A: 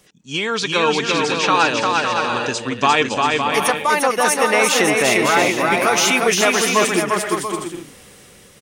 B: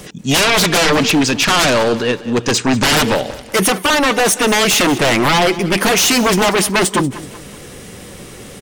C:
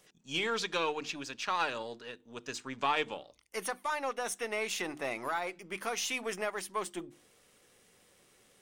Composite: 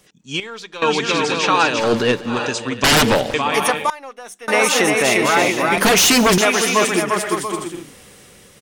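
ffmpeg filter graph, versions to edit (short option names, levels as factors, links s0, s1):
-filter_complex "[2:a]asplit=2[s0][s1];[1:a]asplit=3[s2][s3][s4];[0:a]asplit=6[s5][s6][s7][s8][s9][s10];[s5]atrim=end=0.402[s11];[s0]atrim=start=0.398:end=0.822[s12];[s6]atrim=start=0.818:end=1.93[s13];[s2]atrim=start=1.77:end=2.4[s14];[s7]atrim=start=2.24:end=2.842[s15];[s3]atrim=start=2.838:end=3.342[s16];[s8]atrim=start=3.338:end=3.902[s17];[s1]atrim=start=3.898:end=4.482[s18];[s9]atrim=start=4.478:end=5.782[s19];[s4]atrim=start=5.778:end=6.382[s20];[s10]atrim=start=6.378[s21];[s11][s12]acrossfade=d=0.004:c1=hsin:c2=hsin[s22];[s22][s13]acrossfade=d=0.004:c1=hsin:c2=hsin[s23];[s23][s14]acrossfade=d=0.16:c1=tri:c2=tri[s24];[s24][s15]acrossfade=d=0.16:c1=tri:c2=tri[s25];[s25][s16]acrossfade=d=0.004:c1=hsin:c2=hsin[s26];[s26][s17]acrossfade=d=0.004:c1=hsin:c2=hsin[s27];[s27][s18]acrossfade=d=0.004:c1=hsin:c2=hsin[s28];[s28][s19]acrossfade=d=0.004:c1=hsin:c2=hsin[s29];[s29][s20]acrossfade=d=0.004:c1=hsin:c2=hsin[s30];[s30][s21]acrossfade=d=0.004:c1=hsin:c2=hsin"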